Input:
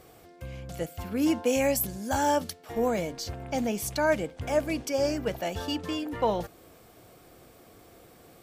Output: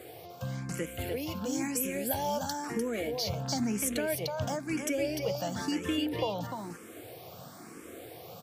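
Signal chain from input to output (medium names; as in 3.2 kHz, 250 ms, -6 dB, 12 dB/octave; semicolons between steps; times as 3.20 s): high-pass 96 Hz 24 dB/octave; compression 4:1, threshold -35 dBFS, peak gain reduction 13.5 dB; dynamic bell 800 Hz, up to -4 dB, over -46 dBFS, Q 0.76; on a send: delay 299 ms -4.5 dB; on the sum: barber-pole phaser +1 Hz; trim +8.5 dB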